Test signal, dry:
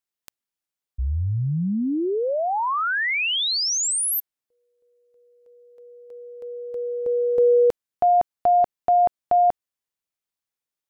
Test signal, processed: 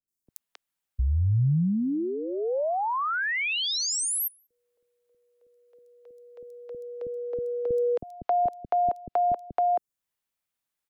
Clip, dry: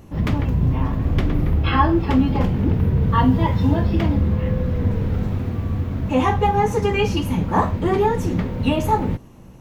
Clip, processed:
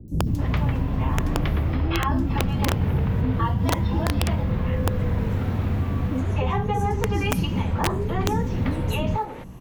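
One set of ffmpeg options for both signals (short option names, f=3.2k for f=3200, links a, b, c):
-filter_complex "[0:a]acrossover=split=150|410[a][b][c];[a]acompressor=threshold=-27dB:ratio=3[d];[b]acompressor=threshold=-32dB:ratio=6[e];[c]acompressor=threshold=-34dB:ratio=2.5[f];[d][e][f]amix=inputs=3:normalize=0,acrossover=split=390|5300[g][h][i];[i]adelay=80[j];[h]adelay=270[k];[g][k][j]amix=inputs=3:normalize=0,aeval=exprs='(mod(6.31*val(0)+1,2)-1)/6.31':c=same,volume=3.5dB"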